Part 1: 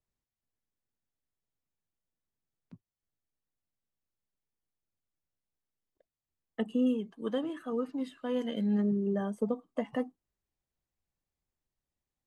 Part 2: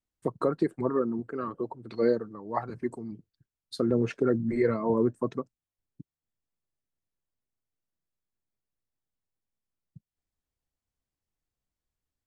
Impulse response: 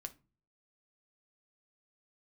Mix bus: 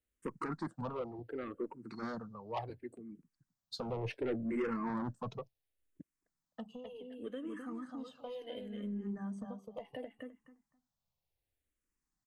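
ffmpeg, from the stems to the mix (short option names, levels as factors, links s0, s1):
-filter_complex "[0:a]acompressor=threshold=0.0141:ratio=6,volume=1.06,asplit=3[s0][s1][s2];[s1]volume=0.562[s3];[1:a]bandreject=f=670:w=21,volume=0.841[s4];[s2]apad=whole_len=540755[s5];[s4][s5]sidechaincompress=threshold=0.001:ratio=3:attack=30:release=955[s6];[s3]aecho=0:1:258|516|774:1|0.18|0.0324[s7];[s0][s6][s7]amix=inputs=3:normalize=0,equalizer=f=390:w=7.3:g=-3.5,asoftclip=type=tanh:threshold=0.0355,asplit=2[s8][s9];[s9]afreqshift=-0.69[s10];[s8][s10]amix=inputs=2:normalize=1"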